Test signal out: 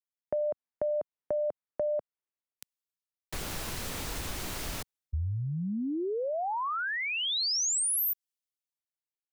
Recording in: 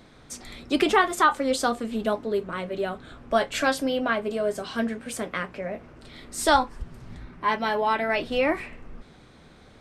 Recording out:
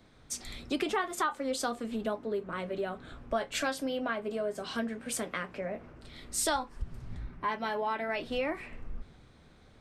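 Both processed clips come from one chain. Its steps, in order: compression 3:1, threshold -32 dBFS; three bands expanded up and down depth 40%

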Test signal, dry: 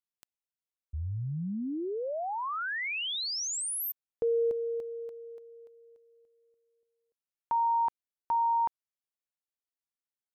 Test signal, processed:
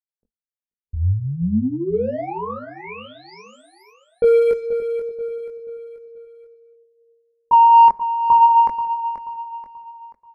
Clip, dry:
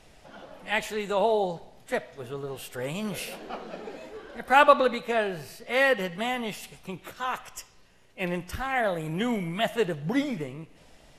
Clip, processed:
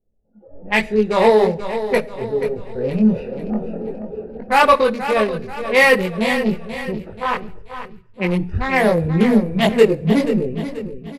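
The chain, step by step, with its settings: local Wiener filter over 41 samples; level-controlled noise filter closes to 550 Hz, open at -27 dBFS; treble shelf 5.2 kHz +5.5 dB; two-slope reverb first 0.52 s, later 2 s, from -25 dB, DRR 19 dB; chorus voices 4, 0.4 Hz, delay 21 ms, depth 2.9 ms; level rider gain up to 13.5 dB; saturation -7.5 dBFS; rippled EQ curve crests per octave 0.89, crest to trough 6 dB; feedback delay 483 ms, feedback 41%, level -11 dB; spectral noise reduction 17 dB; trim +3 dB

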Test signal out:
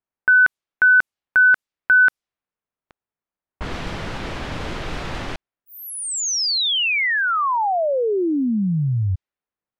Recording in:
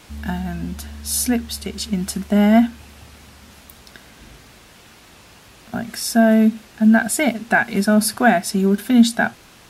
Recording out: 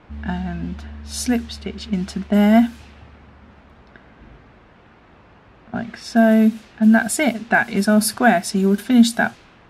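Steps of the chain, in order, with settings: level-controlled noise filter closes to 1.5 kHz, open at -13.5 dBFS

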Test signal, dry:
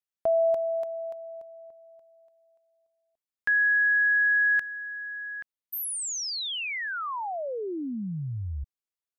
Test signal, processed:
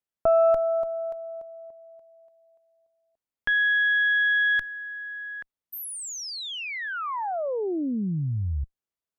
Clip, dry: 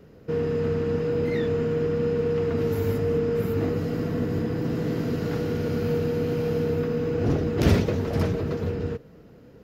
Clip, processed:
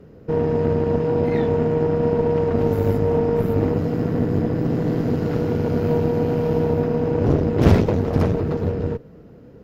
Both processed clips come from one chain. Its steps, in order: tilt shelf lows +4.5 dB, about 1.4 kHz; Chebyshev shaper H 6 -17 dB, 8 -42 dB, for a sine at -2.5 dBFS; trim +1 dB

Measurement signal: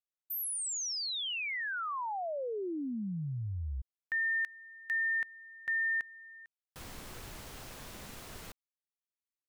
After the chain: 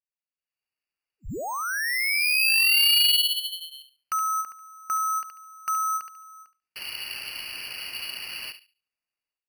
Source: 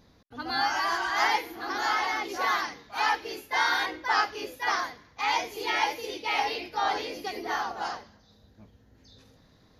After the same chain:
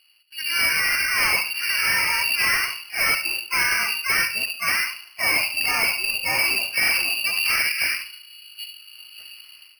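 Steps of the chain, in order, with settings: high-pass 200 Hz 24 dB/octave; tilt EQ -4.5 dB/octave; filtered feedback delay 71 ms, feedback 25%, low-pass 1.4 kHz, level -8.5 dB; level rider gain up to 15 dB; overload inside the chain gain 12 dB; frequency inversion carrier 3.1 kHz; careless resampling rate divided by 6×, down filtered, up hold; endings held to a fixed fall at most 230 dB/s; trim -4.5 dB

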